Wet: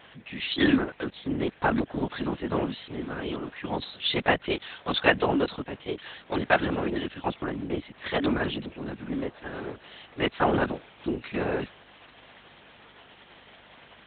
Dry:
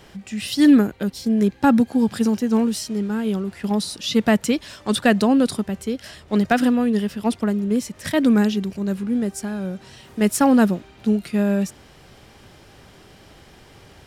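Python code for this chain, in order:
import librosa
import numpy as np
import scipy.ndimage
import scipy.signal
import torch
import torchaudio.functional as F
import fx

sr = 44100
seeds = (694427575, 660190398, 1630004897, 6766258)

y = fx.lpc_vocoder(x, sr, seeds[0], excitation='whisper', order=8)
y = fx.add_hum(y, sr, base_hz=50, snr_db=28)
y = fx.highpass(y, sr, hz=800.0, slope=6)
y = F.gain(torch.from_numpy(y), 1.5).numpy()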